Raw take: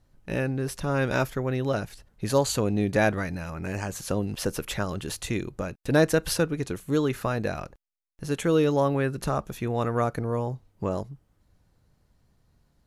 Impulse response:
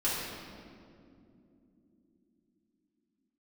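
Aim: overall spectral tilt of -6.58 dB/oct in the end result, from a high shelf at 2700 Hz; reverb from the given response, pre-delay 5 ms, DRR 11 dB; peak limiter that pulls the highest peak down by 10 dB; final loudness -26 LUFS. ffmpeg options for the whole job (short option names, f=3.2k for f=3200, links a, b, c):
-filter_complex "[0:a]highshelf=f=2.7k:g=-7.5,alimiter=limit=-18dB:level=0:latency=1,asplit=2[a][b];[1:a]atrim=start_sample=2205,adelay=5[c];[b][c]afir=irnorm=-1:irlink=0,volume=-19.5dB[d];[a][d]amix=inputs=2:normalize=0,volume=4dB"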